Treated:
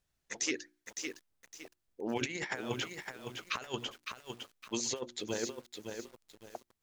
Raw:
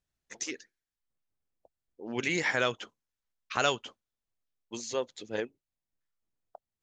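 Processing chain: notches 60/120/180/240/300/360 Hz; negative-ratio compressor -35 dBFS, ratio -0.5; lo-fi delay 0.56 s, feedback 35%, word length 9-bit, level -5.5 dB

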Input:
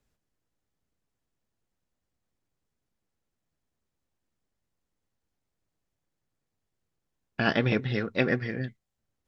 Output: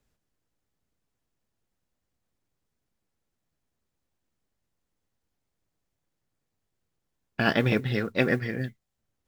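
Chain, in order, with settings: modulation noise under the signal 33 dB; gain +1.5 dB

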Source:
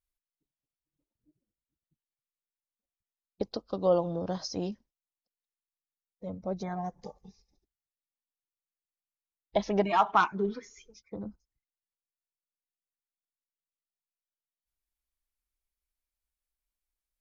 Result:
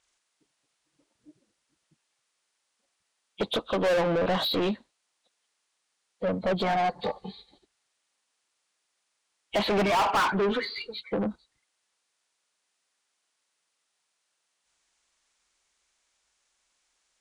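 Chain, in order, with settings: nonlinear frequency compression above 2200 Hz 1.5:1; overdrive pedal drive 36 dB, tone 3700 Hz, clips at -10.5 dBFS; gain -6.5 dB

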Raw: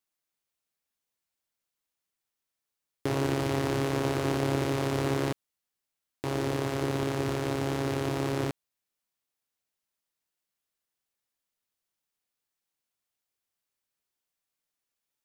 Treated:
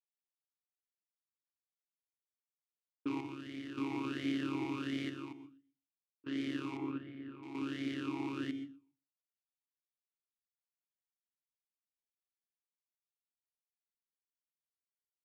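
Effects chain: low-pass opened by the level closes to 560 Hz, open at -25 dBFS; gate with hold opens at -21 dBFS; high shelf 2300 Hz +9.5 dB; chopper 0.53 Hz, depth 60%, duty 70%; 6.77–7.43 air absorption 480 m; feedback echo 0.123 s, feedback 29%, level -22 dB; reverb RT60 0.25 s, pre-delay 0.116 s, DRR 12.5 dB; vowel sweep i-u 1.4 Hz; gain +1.5 dB

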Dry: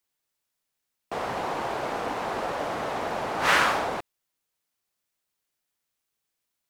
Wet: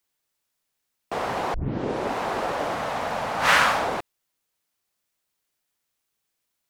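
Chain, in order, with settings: 1.54 tape start 0.62 s; 2.75–3.81 bell 360 Hz -12 dB 0.44 oct; gain +3 dB

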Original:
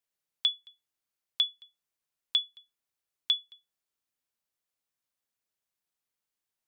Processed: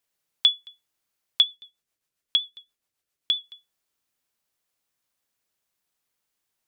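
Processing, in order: 1.42–3.44 rotary speaker horn 7.5 Hz; gain +8 dB

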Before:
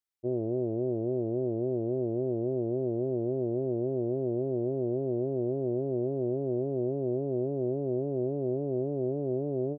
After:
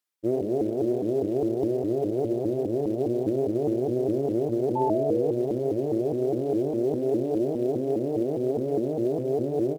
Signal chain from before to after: HPF 140 Hz 12 dB/oct; reverb removal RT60 0.76 s; feedback echo 68 ms, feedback 41%, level -7.5 dB; in parallel at -10.5 dB: short-mantissa float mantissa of 2-bit; on the sum: painted sound fall, 4.75–5.33, 400–940 Hz -31 dBFS; shaped vibrato saw up 4.9 Hz, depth 250 cents; gain +4 dB

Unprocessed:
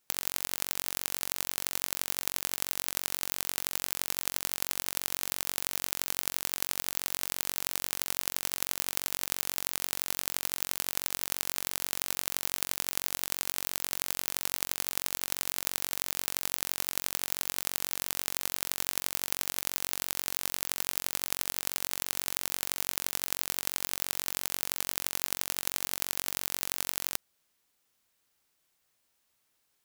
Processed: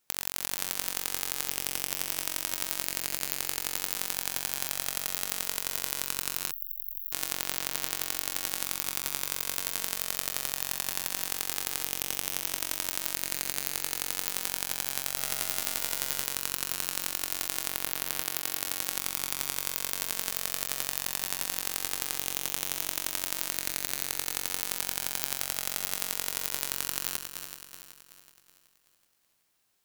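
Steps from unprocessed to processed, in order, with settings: regenerating reverse delay 0.188 s, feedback 66%, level -7.5 dB; 6.51–7.12 inverse Chebyshev band-stop 230–3700 Hz, stop band 80 dB; 15.16–16.23 doubler 14 ms -5.5 dB; 18.22–18.91 HPF 67 Hz

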